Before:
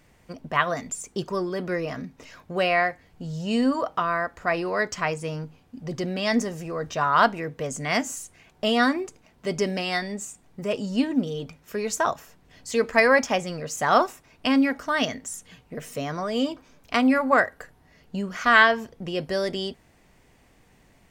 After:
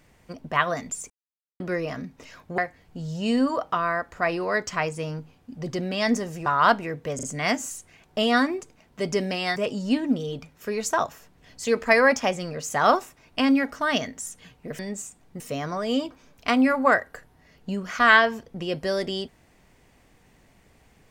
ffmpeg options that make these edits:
-filter_complex "[0:a]asplit=10[a][b][c][d][e][f][g][h][i][j];[a]atrim=end=1.1,asetpts=PTS-STARTPTS,afade=t=out:st=1.096:d=0.004:c=hsin[k];[b]atrim=start=1.1:end=1.6,asetpts=PTS-STARTPTS,volume=0[l];[c]atrim=start=1.6:end=2.582,asetpts=PTS-STARTPTS,afade=t=in:d=0.004:c=hsin[m];[d]atrim=start=2.828:end=6.712[n];[e]atrim=start=6.998:end=7.732[o];[f]atrim=start=7.688:end=7.732[p];[g]atrim=start=7.688:end=10.022[q];[h]atrim=start=10.628:end=15.862[r];[i]atrim=start=10.018:end=10.632[s];[j]atrim=start=15.858[t];[k][l][m]concat=n=3:v=0:a=1[u];[u][n]acrossfade=d=0.004:c1=hsin:c2=hsin[v];[v][o]acrossfade=d=0.004:c1=hsin:c2=hsin[w];[w][p]acrossfade=d=0.004:c1=hsin:c2=hsin[x];[x][q]acrossfade=d=0.004:c1=hsin:c2=hsin[y];[y][r]acrossfade=d=0.004:c1=hsin:c2=hsin[z];[z][s]acrossfade=d=0.004:c1=hsin:c2=hsin[aa];[aa][t]acrossfade=d=0.004:c1=hsin:c2=hsin"

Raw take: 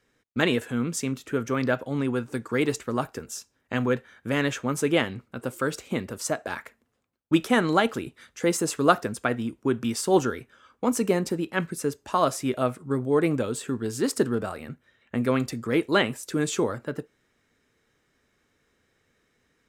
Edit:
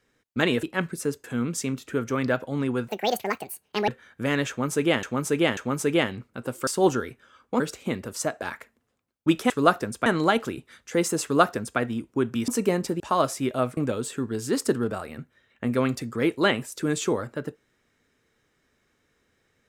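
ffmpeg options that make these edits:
-filter_complex "[0:a]asplit=14[a][b][c][d][e][f][g][h][i][j][k][l][m][n];[a]atrim=end=0.632[o];[b]atrim=start=11.418:end=12.032[p];[c]atrim=start=0.628:end=2.274[q];[d]atrim=start=2.27:end=3.94,asetpts=PTS-STARTPTS,asetrate=73647,aresample=44100[r];[e]atrim=start=3.936:end=5.092[s];[f]atrim=start=4.548:end=5.092[t];[g]atrim=start=4.548:end=5.652[u];[h]atrim=start=9.968:end=10.902[v];[i]atrim=start=5.648:end=7.552[w];[j]atrim=start=8.718:end=9.282[x];[k]atrim=start=7.548:end=9.972[y];[l]atrim=start=10.898:end=11.422[z];[m]atrim=start=12.028:end=12.802[aa];[n]atrim=start=13.278[ab];[o][p]acrossfade=d=0.004:c1=hsin:c2=hsin[ac];[ac][q]acrossfade=d=0.004:c1=hsin:c2=hsin[ad];[ad][r]acrossfade=d=0.004:c1=hsin:c2=hsin[ae];[ae][s]acrossfade=d=0.004:c1=hsin:c2=hsin[af];[af][t]acrossfade=d=0.004:c1=hsin:c2=hsin[ag];[ag][u]acrossfade=d=0.004:c1=hsin:c2=hsin[ah];[ah][v]acrossfade=d=0.004:c1=hsin:c2=hsin[ai];[ai][w]acrossfade=d=0.004:c1=hsin:c2=hsin[aj];[aj][x]acrossfade=d=0.004:c1=hsin:c2=hsin[ak];[ak][y]acrossfade=d=0.004:c1=hsin:c2=hsin[al];[al][z]acrossfade=d=0.004:c1=hsin:c2=hsin[am];[am][aa]acrossfade=d=0.004:c1=hsin:c2=hsin[an];[an][ab]acrossfade=d=0.004:c1=hsin:c2=hsin"

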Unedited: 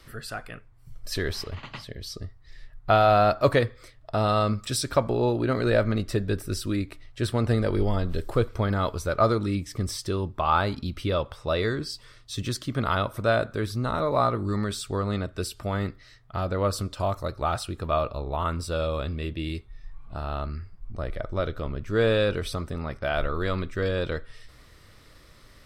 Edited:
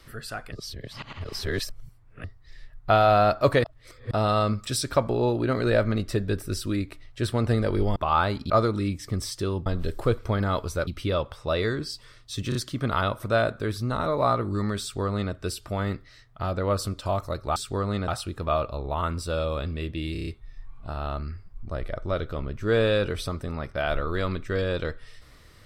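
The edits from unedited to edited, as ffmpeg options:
-filter_complex "[0:a]asplit=18[a][b][c][d][e][f][g][h][i][j][k][l][m][n][o][p][q][r];[a]atrim=end=0.522[s];[b]atrim=start=0.518:end=2.242,asetpts=PTS-STARTPTS,areverse[t];[c]atrim=start=2.238:end=3.642[u];[d]atrim=start=3.638:end=4.112,asetpts=PTS-STARTPTS,areverse[v];[e]atrim=start=4.108:end=7.962[w];[f]atrim=start=10.328:end=10.872[x];[g]atrim=start=9.168:end=10.332[y];[h]atrim=start=7.958:end=9.172[z];[i]atrim=start=10.868:end=12.522[aa];[j]atrim=start=12.488:end=12.522[ab];[k]atrim=start=12.488:end=17.502[ac];[l]atrim=start=14.748:end=15.272[ad];[m]atrim=start=17.498:end=19.572[ae];[n]atrim=start=19.538:end=19.572[af];[o]atrim=start=19.538:end=19.572[ag];[p]atrim=start=19.538:end=19.572[ah];[q]atrim=start=19.538:end=19.572[ai];[r]atrim=start=19.538[aj];[s][t]acrossfade=d=0.004:c1=hsin:c2=hsin[ak];[ak][u]acrossfade=d=0.004:c1=hsin:c2=hsin[al];[al][v]acrossfade=d=0.004:c1=hsin:c2=hsin[am];[am][w]acrossfade=d=0.004:c1=hsin:c2=hsin[an];[an][x]acrossfade=d=0.004:c1=hsin:c2=hsin[ao];[ao][y]acrossfade=d=0.004:c1=hsin:c2=hsin[ap];[ap][z]acrossfade=d=0.004:c1=hsin:c2=hsin[aq];[aq][aa]acrossfade=d=0.004:c1=hsin:c2=hsin[ar];[ar][ab]acrossfade=d=0.004:c1=hsin:c2=hsin[as];[as][ac]acrossfade=d=0.004:c1=hsin:c2=hsin[at];[at][ad]acrossfade=d=0.004:c1=hsin:c2=hsin[au];[au][ae]acrossfade=d=0.004:c1=hsin:c2=hsin[av];[av][af]acrossfade=d=0.004:c1=hsin:c2=hsin[aw];[aw][ag]acrossfade=d=0.004:c1=hsin:c2=hsin[ax];[ax][ah]acrossfade=d=0.004:c1=hsin:c2=hsin[ay];[ay][ai]acrossfade=d=0.004:c1=hsin:c2=hsin[az];[az][aj]acrossfade=d=0.004:c1=hsin:c2=hsin"

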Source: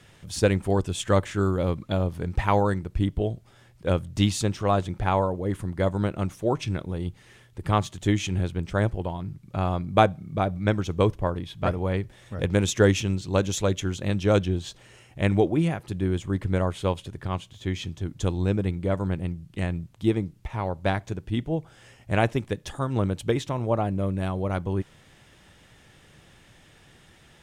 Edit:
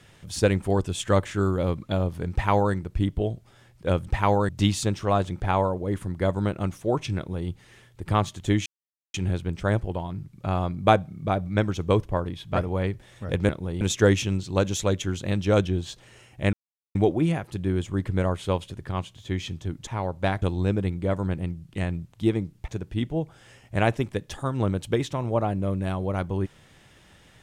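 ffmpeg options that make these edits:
-filter_complex "[0:a]asplit=10[a][b][c][d][e][f][g][h][i][j];[a]atrim=end=4.072[k];[b]atrim=start=2.318:end=2.742[l];[c]atrim=start=4.068:end=8.24,asetpts=PTS-STARTPTS,afade=t=out:st=4.168:d=0.004:c=hsin,apad=pad_dur=0.48[m];[d]atrim=start=8.24:end=12.592,asetpts=PTS-STARTPTS,afade=t=in:d=0.004:c=hsin[n];[e]atrim=start=6.748:end=7.072[o];[f]atrim=start=12.588:end=15.31,asetpts=PTS-STARTPTS,afade=t=out:st=2.718:d=0.004:c=hsin,apad=pad_dur=0.42[p];[g]atrim=start=15.31:end=18.232,asetpts=PTS-STARTPTS,afade=t=in:d=0.004:c=hsin[q];[h]atrim=start=20.488:end=21.042[r];[i]atrim=start=18.228:end=20.492[s];[j]atrim=start=21.038[t];[k][l]acrossfade=d=0.004:c1=hsin:c2=hsin[u];[m][n]concat=n=2:v=0:a=1[v];[u][v]acrossfade=d=0.004:c1=hsin:c2=hsin[w];[w][o]acrossfade=d=0.004:c1=hsin:c2=hsin[x];[p][q]concat=n=2:v=0:a=1[y];[x][y]acrossfade=d=0.004:c1=hsin:c2=hsin[z];[z][r]acrossfade=d=0.004:c1=hsin:c2=hsin[aa];[aa][s]acrossfade=d=0.004:c1=hsin:c2=hsin[ab];[ab][t]acrossfade=d=0.004:c1=hsin:c2=hsin"

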